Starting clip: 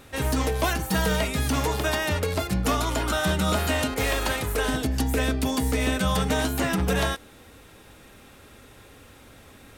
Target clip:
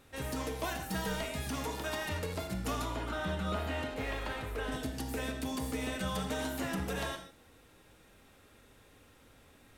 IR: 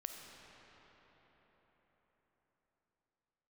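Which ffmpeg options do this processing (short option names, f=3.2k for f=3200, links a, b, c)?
-filter_complex "[0:a]asettb=1/sr,asplit=3[a][b][c];[a]atrim=end=2.854[d];[b]atrim=start=2.85:end=4.72,asetpts=PTS-STARTPTS,afade=t=in:d=0.004:c=qsin,afade=t=out:st=1.866:d=0.004:c=qsin,acrossover=split=3600[e][f];[f]acompressor=threshold=-45dB:ratio=4:attack=1:release=60[g];[e][g]amix=inputs=2:normalize=0[h];[c]atrim=start=4.716[i];[d][h]acrossfade=d=0.004:c1=hsin:c2=qsin[j];[j][i]acrossfade=d=0.004:c1=qsin:c2=hsin[k];[1:a]atrim=start_sample=2205,afade=t=out:st=0.29:d=0.01,atrim=end_sample=13230,asetrate=66150,aresample=44100[l];[k][l]afir=irnorm=-1:irlink=0,volume=-4dB"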